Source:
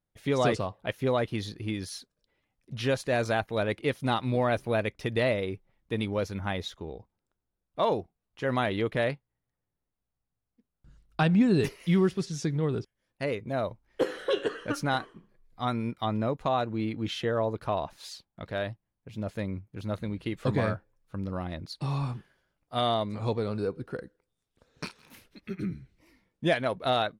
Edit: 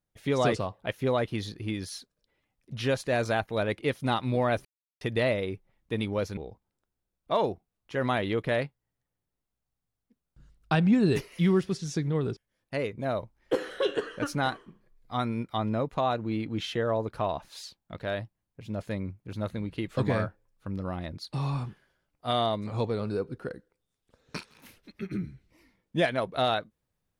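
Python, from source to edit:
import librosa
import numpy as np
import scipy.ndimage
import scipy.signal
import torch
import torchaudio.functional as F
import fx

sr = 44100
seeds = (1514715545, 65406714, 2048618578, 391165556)

y = fx.edit(x, sr, fx.silence(start_s=4.65, length_s=0.36),
    fx.cut(start_s=6.37, length_s=0.48), tone=tone)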